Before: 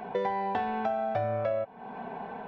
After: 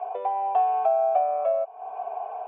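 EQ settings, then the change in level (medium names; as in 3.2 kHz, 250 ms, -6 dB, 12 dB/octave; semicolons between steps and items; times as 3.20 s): vowel filter a; cabinet simulation 430–3600 Hz, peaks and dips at 430 Hz +10 dB, 640 Hz +8 dB, 920 Hz +9 dB, 1.3 kHz +4 dB, 2 kHz +6 dB, 3.2 kHz +5 dB; +5.0 dB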